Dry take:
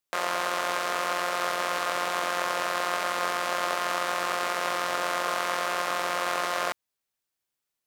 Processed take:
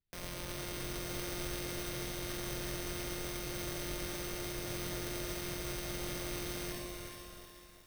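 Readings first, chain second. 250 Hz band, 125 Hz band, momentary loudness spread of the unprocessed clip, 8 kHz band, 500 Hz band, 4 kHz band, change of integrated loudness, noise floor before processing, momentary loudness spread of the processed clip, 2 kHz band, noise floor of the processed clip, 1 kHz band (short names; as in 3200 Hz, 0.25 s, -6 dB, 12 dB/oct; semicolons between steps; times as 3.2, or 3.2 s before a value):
+0.5 dB, +8.5 dB, 0 LU, -5.0 dB, -11.5 dB, -9.5 dB, -12.0 dB, -85 dBFS, 5 LU, -15.5 dB, -55 dBFS, -21.5 dB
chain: AGC; notch 1300 Hz, Q 7.1; shoebox room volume 140 m³, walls mixed, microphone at 0.49 m; sample-rate reducer 7200 Hz, jitter 0%; low shelf 200 Hz +5.5 dB; limiter -14.5 dBFS, peak gain reduction 12 dB; passive tone stack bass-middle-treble 10-0-1; on a send: echo with dull and thin repeats by turns 0.217 s, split 1200 Hz, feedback 59%, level -4 dB; on the sum: lo-fi delay 0.365 s, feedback 55%, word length 11-bit, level -7.5 dB; gain +9 dB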